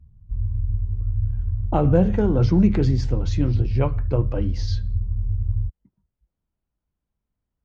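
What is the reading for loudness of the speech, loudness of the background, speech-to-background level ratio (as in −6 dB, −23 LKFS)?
−22.0 LKFS, −27.0 LKFS, 5.0 dB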